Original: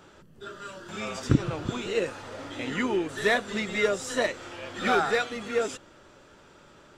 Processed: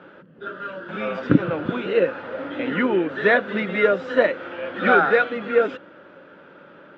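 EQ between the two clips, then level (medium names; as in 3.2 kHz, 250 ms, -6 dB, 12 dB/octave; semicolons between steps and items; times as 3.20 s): cabinet simulation 160–3100 Hz, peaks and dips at 180 Hz +7 dB, 290 Hz +6 dB, 530 Hz +9 dB, 1.5 kHz +8 dB; +3.5 dB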